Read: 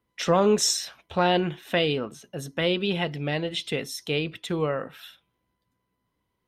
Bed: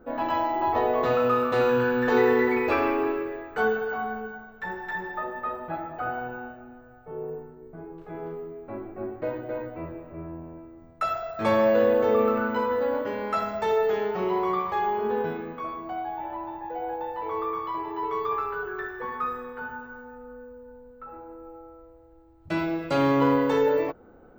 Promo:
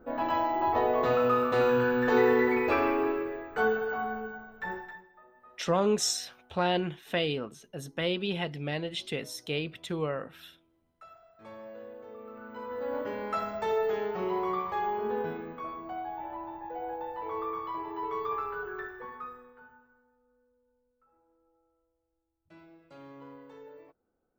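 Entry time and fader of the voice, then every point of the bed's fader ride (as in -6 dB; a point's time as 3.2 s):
5.40 s, -5.5 dB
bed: 4.77 s -2.5 dB
5.09 s -25 dB
12.21 s -25 dB
13 s -5 dB
18.79 s -5 dB
20.17 s -27.5 dB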